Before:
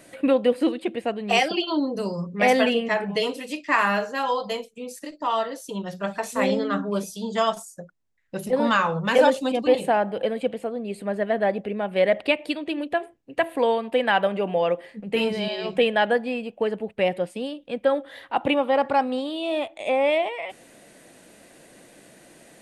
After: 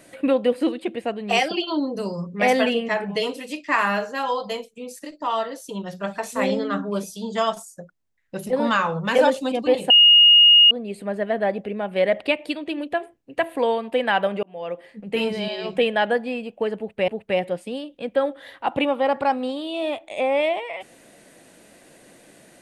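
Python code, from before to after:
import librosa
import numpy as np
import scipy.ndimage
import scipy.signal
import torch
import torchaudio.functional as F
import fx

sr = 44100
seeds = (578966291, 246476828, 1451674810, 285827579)

y = fx.edit(x, sr, fx.bleep(start_s=9.9, length_s=0.81, hz=2860.0, db=-8.5),
    fx.fade_in_span(start_s=14.43, length_s=0.89, curve='qsin'),
    fx.repeat(start_s=16.77, length_s=0.31, count=2), tone=tone)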